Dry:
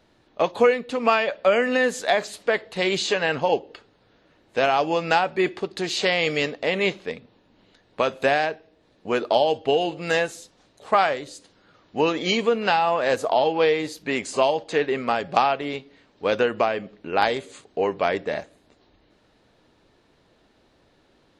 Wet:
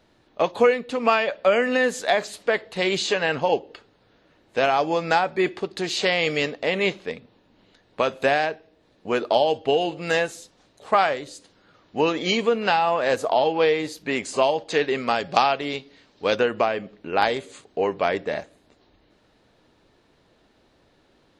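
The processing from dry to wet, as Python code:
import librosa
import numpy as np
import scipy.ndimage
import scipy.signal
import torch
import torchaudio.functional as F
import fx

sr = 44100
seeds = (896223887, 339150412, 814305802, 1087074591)

y = fx.notch(x, sr, hz=2800.0, q=7.3, at=(4.7, 5.41))
y = fx.peak_eq(y, sr, hz=5100.0, db=7.0, octaves=1.5, at=(14.7, 16.36))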